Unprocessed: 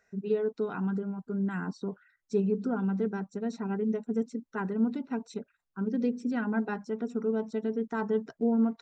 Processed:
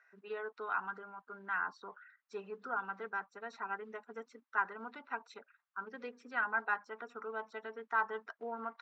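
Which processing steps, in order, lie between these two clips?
ladder band-pass 1.5 kHz, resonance 35%; trim +14.5 dB

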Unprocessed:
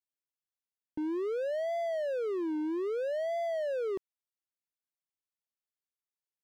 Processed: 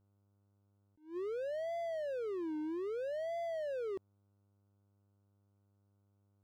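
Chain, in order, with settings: mains buzz 100 Hz, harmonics 15, -68 dBFS -8 dB/octave; attacks held to a fixed rise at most 170 dB/s; trim -6 dB

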